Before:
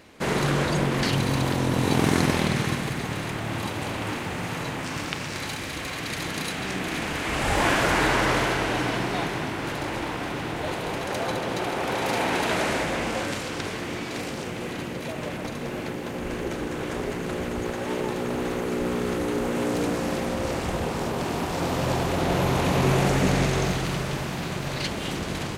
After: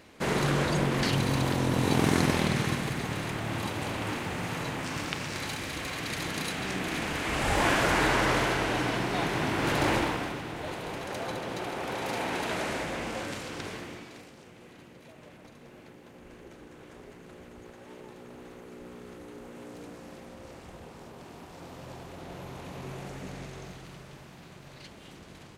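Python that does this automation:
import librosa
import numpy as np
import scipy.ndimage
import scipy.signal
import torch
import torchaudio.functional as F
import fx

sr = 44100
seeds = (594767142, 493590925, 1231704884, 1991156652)

y = fx.gain(x, sr, db=fx.line((9.09, -3.0), (9.91, 5.0), (10.43, -7.0), (13.75, -7.0), (14.31, -19.0)))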